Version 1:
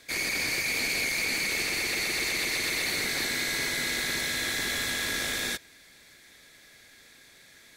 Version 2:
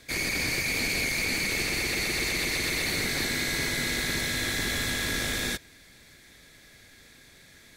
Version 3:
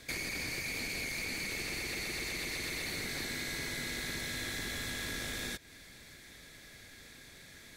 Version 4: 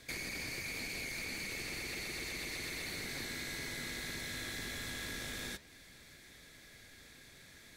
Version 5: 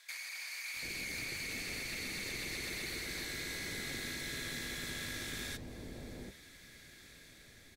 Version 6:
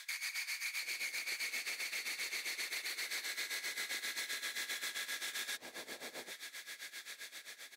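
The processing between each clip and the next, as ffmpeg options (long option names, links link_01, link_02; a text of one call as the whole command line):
ffmpeg -i in.wav -af "lowshelf=frequency=240:gain=11" out.wav
ffmpeg -i in.wav -af "acompressor=threshold=-36dB:ratio=6" out.wav
ffmpeg -i in.wav -af "flanger=delay=7.3:depth=8.6:regen=88:speed=1.9:shape=sinusoidal,volume=1dB" out.wav
ffmpeg -i in.wav -filter_complex "[0:a]dynaudnorm=framelen=270:gausssize=5:maxgain=3dB,acrossover=split=850[link_01][link_02];[link_01]adelay=740[link_03];[link_03][link_02]amix=inputs=2:normalize=0,volume=-2dB" out.wav
ffmpeg -i in.wav -af "highpass=760,tremolo=f=7.6:d=0.84,alimiter=level_in=18dB:limit=-24dB:level=0:latency=1:release=164,volume=-18dB,volume=12dB" out.wav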